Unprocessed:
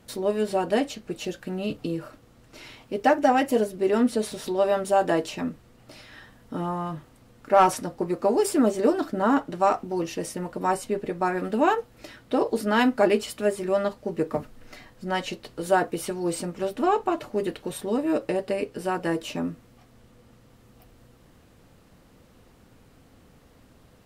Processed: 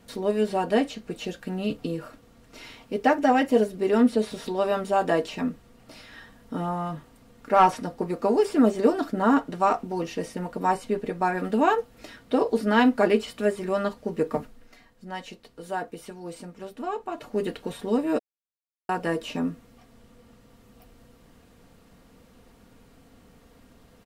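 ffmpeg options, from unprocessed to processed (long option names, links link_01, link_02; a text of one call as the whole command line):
ffmpeg -i in.wav -filter_complex "[0:a]asplit=5[link_01][link_02][link_03][link_04][link_05];[link_01]atrim=end=14.7,asetpts=PTS-STARTPTS,afade=type=out:start_time=14.37:duration=0.33:silence=0.354813[link_06];[link_02]atrim=start=14.7:end=17.08,asetpts=PTS-STARTPTS,volume=-9dB[link_07];[link_03]atrim=start=17.08:end=18.19,asetpts=PTS-STARTPTS,afade=type=in:duration=0.33:silence=0.354813,afade=type=out:start_time=1.106:duration=0.004:curve=hsin[link_08];[link_04]atrim=start=18.19:end=18.89,asetpts=PTS-STARTPTS,volume=0[link_09];[link_05]atrim=start=18.89,asetpts=PTS-STARTPTS,afade=type=in:duration=0.004:curve=hsin[link_10];[link_06][link_07][link_08][link_09][link_10]concat=n=5:v=0:a=1,acrossover=split=4400[link_11][link_12];[link_12]acompressor=threshold=-47dB:ratio=4:attack=1:release=60[link_13];[link_11][link_13]amix=inputs=2:normalize=0,aecho=1:1:4.3:0.35" out.wav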